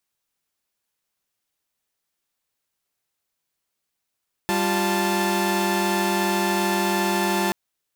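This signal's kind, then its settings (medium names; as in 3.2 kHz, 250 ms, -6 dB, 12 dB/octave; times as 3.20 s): chord G3/F4/A5 saw, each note -22 dBFS 3.03 s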